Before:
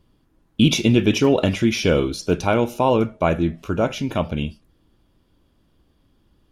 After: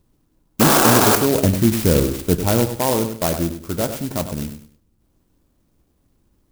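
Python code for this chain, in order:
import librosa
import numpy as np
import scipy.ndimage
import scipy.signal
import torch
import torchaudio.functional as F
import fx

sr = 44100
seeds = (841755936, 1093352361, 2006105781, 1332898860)

p1 = fx.spec_paint(x, sr, seeds[0], shape='noise', start_s=0.6, length_s=0.56, low_hz=250.0, high_hz=1700.0, level_db=-13.0)
p2 = fx.low_shelf(p1, sr, hz=240.0, db=9.0, at=(1.35, 2.76))
p3 = fx.spec_box(p2, sr, start_s=4.8, length_s=0.21, low_hz=260.0, high_hz=8000.0, gain_db=-7)
p4 = p3 + fx.echo_feedback(p3, sr, ms=99, feedback_pct=28, wet_db=-9, dry=0)
p5 = fx.clock_jitter(p4, sr, seeds[1], jitter_ms=0.12)
y = p5 * librosa.db_to_amplitude(-2.0)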